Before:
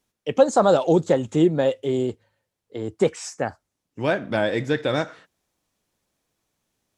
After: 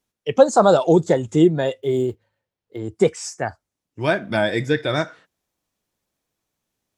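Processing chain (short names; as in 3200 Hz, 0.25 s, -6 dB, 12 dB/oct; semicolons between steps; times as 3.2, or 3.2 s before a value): 1.78–2.79 median filter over 5 samples; spectral noise reduction 7 dB; 4.01–4.67 high shelf 5900 Hz +5.5 dB; gain +3.5 dB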